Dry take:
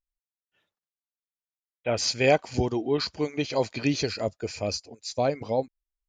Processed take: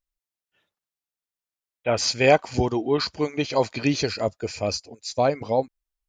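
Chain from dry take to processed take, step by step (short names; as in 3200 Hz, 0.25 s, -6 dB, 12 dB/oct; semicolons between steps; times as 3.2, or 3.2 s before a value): dynamic EQ 1100 Hz, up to +5 dB, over -38 dBFS, Q 1.2; gain +2.5 dB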